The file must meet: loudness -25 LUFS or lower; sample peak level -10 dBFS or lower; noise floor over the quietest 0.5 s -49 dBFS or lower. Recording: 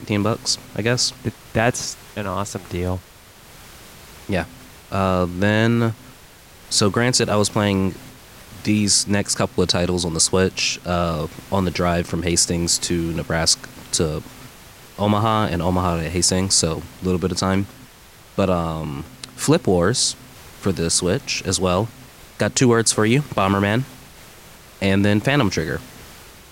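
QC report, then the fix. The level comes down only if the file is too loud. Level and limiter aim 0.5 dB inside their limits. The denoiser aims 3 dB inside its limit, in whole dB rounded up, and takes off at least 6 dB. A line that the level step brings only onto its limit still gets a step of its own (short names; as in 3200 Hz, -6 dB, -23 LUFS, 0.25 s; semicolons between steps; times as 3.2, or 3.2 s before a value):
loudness -20.0 LUFS: fail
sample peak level -4.5 dBFS: fail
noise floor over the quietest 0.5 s -46 dBFS: fail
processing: gain -5.5 dB; limiter -10.5 dBFS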